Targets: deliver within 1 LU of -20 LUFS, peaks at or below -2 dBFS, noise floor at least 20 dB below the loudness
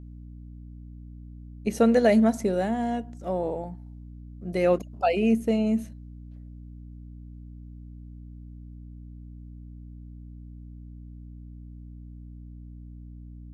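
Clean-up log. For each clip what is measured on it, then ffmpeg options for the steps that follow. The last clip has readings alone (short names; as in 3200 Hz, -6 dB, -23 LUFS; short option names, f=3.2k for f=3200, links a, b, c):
hum 60 Hz; harmonics up to 300 Hz; hum level -40 dBFS; loudness -25.0 LUFS; peak -9.0 dBFS; loudness target -20.0 LUFS
-> -af "bandreject=f=60:t=h:w=6,bandreject=f=120:t=h:w=6,bandreject=f=180:t=h:w=6,bandreject=f=240:t=h:w=6,bandreject=f=300:t=h:w=6"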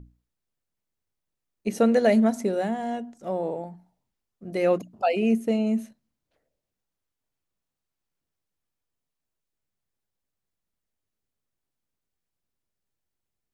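hum none; loudness -25.0 LUFS; peak -8.5 dBFS; loudness target -20.0 LUFS
-> -af "volume=5dB"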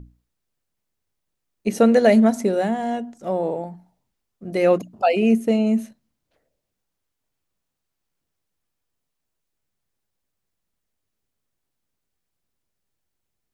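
loudness -20.0 LUFS; peak -3.5 dBFS; noise floor -80 dBFS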